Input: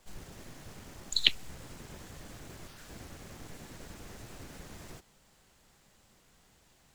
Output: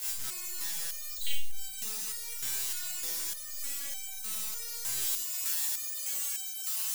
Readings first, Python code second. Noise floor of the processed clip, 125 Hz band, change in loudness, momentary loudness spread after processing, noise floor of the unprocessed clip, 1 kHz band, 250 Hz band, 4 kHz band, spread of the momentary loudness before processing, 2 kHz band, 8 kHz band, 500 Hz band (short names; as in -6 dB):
-40 dBFS, n/a, +3.5 dB, 7 LU, -65 dBFS, +1.5 dB, -9.5 dB, -4.5 dB, 22 LU, -1.0 dB, +16.5 dB, -4.0 dB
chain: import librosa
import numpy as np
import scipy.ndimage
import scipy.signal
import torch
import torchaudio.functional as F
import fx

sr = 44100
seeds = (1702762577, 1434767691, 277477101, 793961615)

y = x + 0.5 * 10.0 ** (-15.0 / 20.0) * np.diff(np.sign(x), prepend=np.sign(x[:1]))
y = fx.rev_schroeder(y, sr, rt60_s=0.41, comb_ms=30, drr_db=-4.0)
y = fx.resonator_held(y, sr, hz=3.3, low_hz=130.0, high_hz=780.0)
y = F.gain(torch.from_numpy(y), -2.5).numpy()